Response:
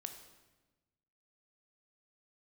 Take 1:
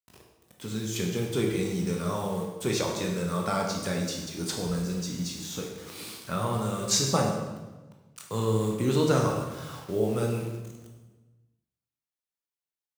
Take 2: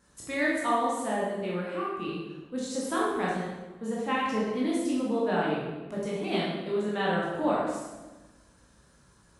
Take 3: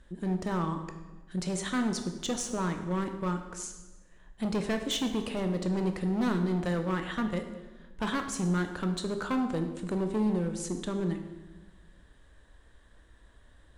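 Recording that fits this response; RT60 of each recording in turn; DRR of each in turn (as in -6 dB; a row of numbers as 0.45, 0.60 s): 3; 1.2, 1.2, 1.2 s; 0.5, -6.0, 6.0 dB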